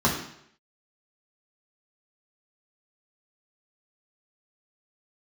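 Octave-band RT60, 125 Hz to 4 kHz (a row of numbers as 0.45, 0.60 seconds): 0.70, 0.65, 0.75, 0.70, 0.70, 0.70 seconds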